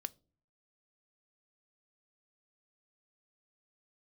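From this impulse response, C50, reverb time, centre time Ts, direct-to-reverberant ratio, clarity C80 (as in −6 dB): 26.5 dB, non-exponential decay, 2 ms, 13.5 dB, 31.0 dB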